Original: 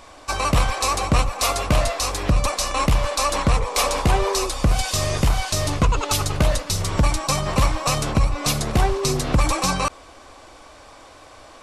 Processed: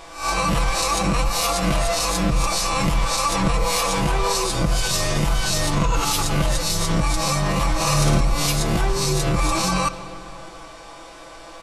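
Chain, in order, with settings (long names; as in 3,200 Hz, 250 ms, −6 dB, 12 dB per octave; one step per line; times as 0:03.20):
peak hold with a rise ahead of every peak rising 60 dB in 0.44 s
comb filter 6 ms, depth 91%
brickwall limiter −12 dBFS, peak gain reduction 10 dB
0:07.75–0:08.21: flutter between parallel walls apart 9.5 metres, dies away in 0.69 s
on a send at −12.5 dB: convolution reverb RT60 3.1 s, pre-delay 25 ms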